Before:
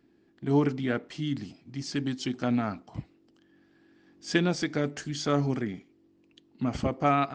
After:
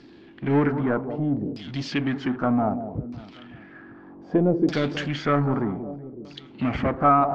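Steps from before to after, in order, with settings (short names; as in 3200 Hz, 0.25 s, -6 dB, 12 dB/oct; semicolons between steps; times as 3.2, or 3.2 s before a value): echo with dull and thin repeats by turns 0.186 s, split 1100 Hz, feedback 55%, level -13.5 dB; power-law curve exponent 0.7; LFO low-pass saw down 0.64 Hz 380–5100 Hz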